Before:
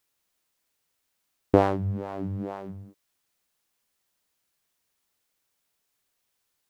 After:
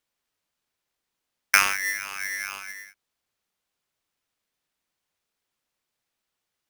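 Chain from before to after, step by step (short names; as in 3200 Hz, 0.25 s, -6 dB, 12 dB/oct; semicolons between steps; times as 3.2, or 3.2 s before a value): high shelf 5300 Hz -11 dB; polarity switched at an audio rate 1900 Hz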